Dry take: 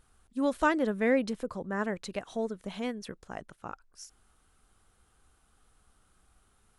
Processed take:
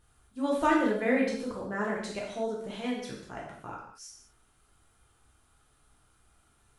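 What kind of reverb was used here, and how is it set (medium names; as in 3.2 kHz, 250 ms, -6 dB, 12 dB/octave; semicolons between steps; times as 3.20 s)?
gated-style reverb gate 260 ms falling, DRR -4.5 dB; trim -4 dB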